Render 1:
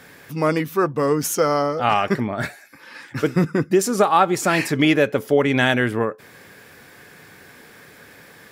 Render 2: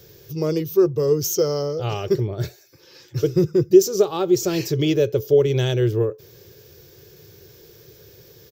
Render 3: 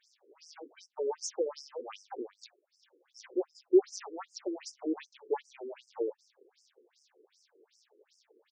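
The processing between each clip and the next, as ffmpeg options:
ffmpeg -i in.wav -af "firequalizer=gain_entry='entry(120,0);entry(250,-25);entry(360,0);entry(720,-20);entry(1900,-25);entry(3000,-12);entry(6000,-2);entry(9900,-28);entry(14000,1)':delay=0.05:min_phase=1,volume=7dB" out.wav
ffmpeg -i in.wav -af "aeval=exprs='if(lt(val(0),0),0.251*val(0),val(0))':channel_layout=same,afftfilt=real='re*between(b*sr/1024,350*pow(7000/350,0.5+0.5*sin(2*PI*2.6*pts/sr))/1.41,350*pow(7000/350,0.5+0.5*sin(2*PI*2.6*pts/sr))*1.41)':imag='im*between(b*sr/1024,350*pow(7000/350,0.5+0.5*sin(2*PI*2.6*pts/sr))/1.41,350*pow(7000/350,0.5+0.5*sin(2*PI*2.6*pts/sr))*1.41)':win_size=1024:overlap=0.75,volume=-6.5dB" out.wav

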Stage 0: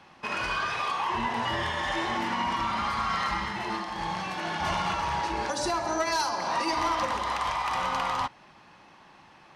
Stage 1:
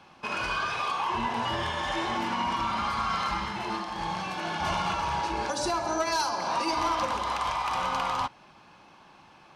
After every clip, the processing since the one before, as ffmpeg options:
ffmpeg -i in.wav -af "bandreject=frequency=1900:width=7.4" out.wav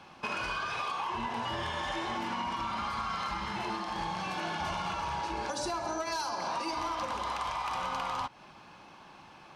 ffmpeg -i in.wav -af "acompressor=threshold=-33dB:ratio=6,volume=1.5dB" out.wav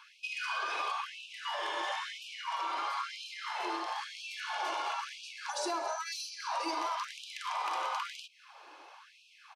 ffmpeg -i in.wav -af "aresample=32000,aresample=44100,afftfilt=real='re*gte(b*sr/1024,260*pow(2400/260,0.5+0.5*sin(2*PI*1*pts/sr)))':imag='im*gte(b*sr/1024,260*pow(2400/260,0.5+0.5*sin(2*PI*1*pts/sr)))':win_size=1024:overlap=0.75" out.wav

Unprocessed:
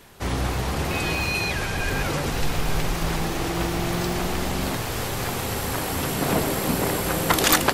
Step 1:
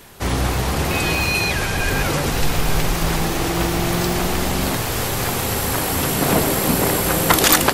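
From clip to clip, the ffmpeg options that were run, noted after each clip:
ffmpeg -i in.wav -af "highshelf=frequency=8000:gain=5,alimiter=level_in=6dB:limit=-1dB:release=50:level=0:latency=1,volume=-1dB" out.wav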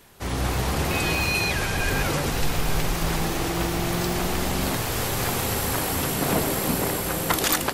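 ffmpeg -i in.wav -af "dynaudnorm=framelen=150:gausssize=5:maxgain=6.5dB,volume=-9dB" out.wav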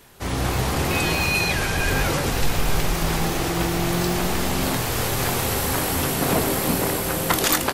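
ffmpeg -i in.wav -filter_complex "[0:a]asplit=2[link_01][link_02];[link_02]adelay=23,volume=-11dB[link_03];[link_01][link_03]amix=inputs=2:normalize=0,volume=2dB" out.wav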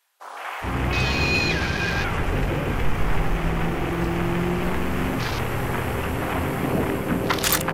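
ffmpeg -i in.wav -filter_complex "[0:a]afwtdn=0.0282,acrossover=split=680[link_01][link_02];[link_01]adelay=420[link_03];[link_03][link_02]amix=inputs=2:normalize=0" out.wav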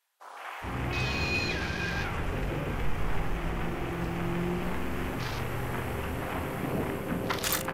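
ffmpeg -i in.wav -filter_complex "[0:a]asplit=2[link_01][link_02];[link_02]adelay=40,volume=-10.5dB[link_03];[link_01][link_03]amix=inputs=2:normalize=0,volume=-8.5dB" out.wav

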